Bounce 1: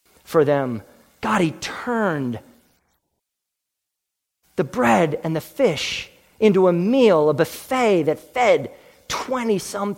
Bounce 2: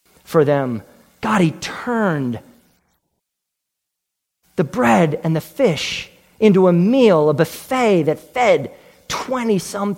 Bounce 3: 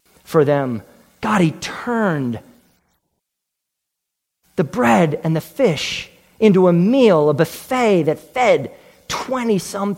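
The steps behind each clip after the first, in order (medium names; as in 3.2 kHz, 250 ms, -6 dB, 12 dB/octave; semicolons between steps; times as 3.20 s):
peaking EQ 170 Hz +6 dB 0.53 oct; trim +2 dB
wow and flutter 23 cents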